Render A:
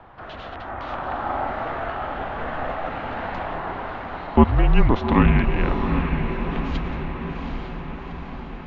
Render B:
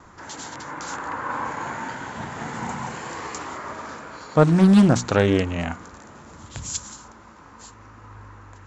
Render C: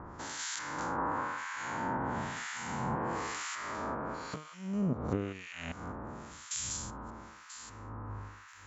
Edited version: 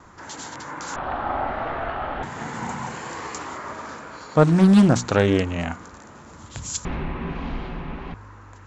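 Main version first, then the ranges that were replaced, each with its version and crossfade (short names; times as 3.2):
B
0.96–2.23 from A
6.85–8.14 from A
not used: C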